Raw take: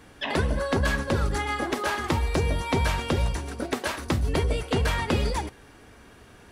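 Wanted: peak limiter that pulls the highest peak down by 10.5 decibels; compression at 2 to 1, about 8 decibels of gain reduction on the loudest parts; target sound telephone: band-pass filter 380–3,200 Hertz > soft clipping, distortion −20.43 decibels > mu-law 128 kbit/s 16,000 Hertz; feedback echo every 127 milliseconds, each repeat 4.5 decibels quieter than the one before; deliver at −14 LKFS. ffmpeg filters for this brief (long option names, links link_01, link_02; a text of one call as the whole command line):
ffmpeg -i in.wav -af "acompressor=threshold=-35dB:ratio=2,alimiter=level_in=2.5dB:limit=-24dB:level=0:latency=1,volume=-2.5dB,highpass=380,lowpass=3200,aecho=1:1:127|254|381|508|635|762|889|1016|1143:0.596|0.357|0.214|0.129|0.0772|0.0463|0.0278|0.0167|0.01,asoftclip=threshold=-29.5dB,volume=25.5dB" -ar 16000 -c:a pcm_mulaw out.wav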